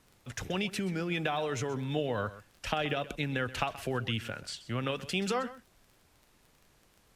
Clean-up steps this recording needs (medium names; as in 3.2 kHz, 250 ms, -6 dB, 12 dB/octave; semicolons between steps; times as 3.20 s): de-click; expander -57 dBFS, range -21 dB; inverse comb 128 ms -16 dB